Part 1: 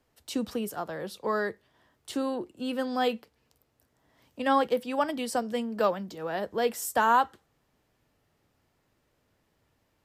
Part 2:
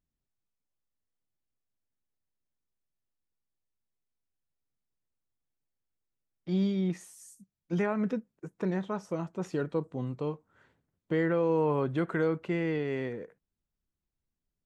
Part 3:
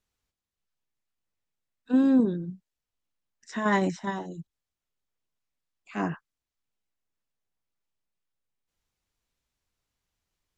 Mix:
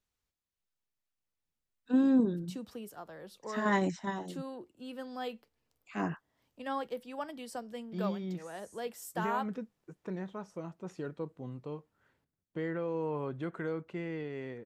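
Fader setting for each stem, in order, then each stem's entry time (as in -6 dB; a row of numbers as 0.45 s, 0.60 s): -12.0 dB, -8.0 dB, -4.5 dB; 2.20 s, 1.45 s, 0.00 s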